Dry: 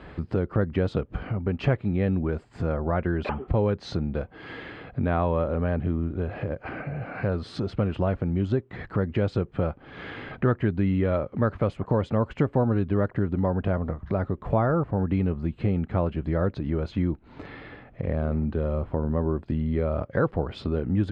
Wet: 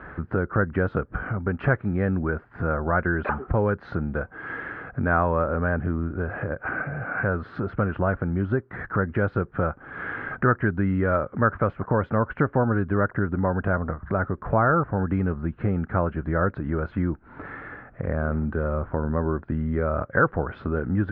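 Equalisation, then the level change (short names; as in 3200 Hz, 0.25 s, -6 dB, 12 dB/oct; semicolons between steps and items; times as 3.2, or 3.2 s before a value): synth low-pass 1500 Hz, resonance Q 4.2; 0.0 dB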